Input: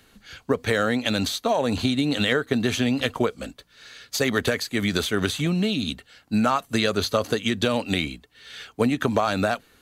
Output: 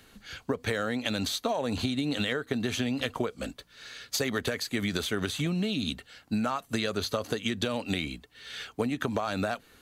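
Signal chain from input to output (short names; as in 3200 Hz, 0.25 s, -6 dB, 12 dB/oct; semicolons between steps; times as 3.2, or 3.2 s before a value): compressor 4:1, threshold -27 dBFS, peak gain reduction 9.5 dB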